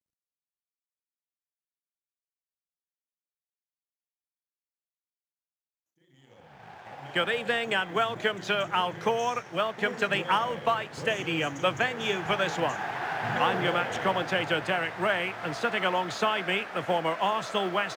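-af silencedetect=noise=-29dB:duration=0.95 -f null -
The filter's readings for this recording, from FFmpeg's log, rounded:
silence_start: 0.00
silence_end: 7.15 | silence_duration: 7.15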